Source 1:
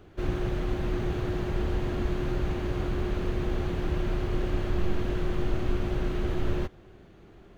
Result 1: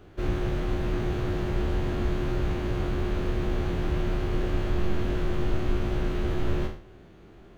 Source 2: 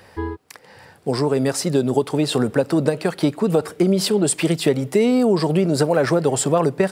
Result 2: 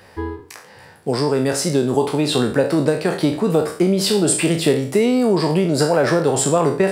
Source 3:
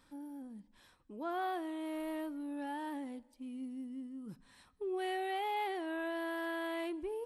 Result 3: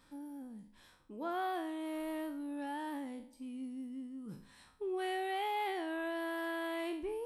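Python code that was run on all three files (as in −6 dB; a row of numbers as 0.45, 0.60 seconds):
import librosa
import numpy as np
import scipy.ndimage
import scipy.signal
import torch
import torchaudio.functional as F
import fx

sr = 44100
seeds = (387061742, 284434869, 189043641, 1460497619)

y = fx.spec_trails(x, sr, decay_s=0.46)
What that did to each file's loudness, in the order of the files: +1.5, +1.5, 0.0 LU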